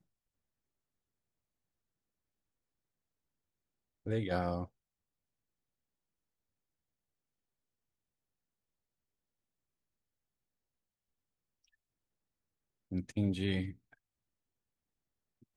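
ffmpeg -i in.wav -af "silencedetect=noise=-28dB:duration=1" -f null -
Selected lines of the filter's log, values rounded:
silence_start: 0.00
silence_end: 4.09 | silence_duration: 4.09
silence_start: 4.61
silence_end: 12.94 | silence_duration: 8.33
silence_start: 13.62
silence_end: 15.56 | silence_duration: 1.94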